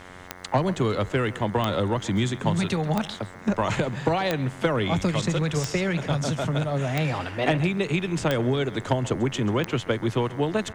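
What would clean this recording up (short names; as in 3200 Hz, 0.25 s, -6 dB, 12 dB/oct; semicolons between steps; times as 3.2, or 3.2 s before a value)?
de-click; de-hum 90.8 Hz, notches 24; inverse comb 0.135 s -18 dB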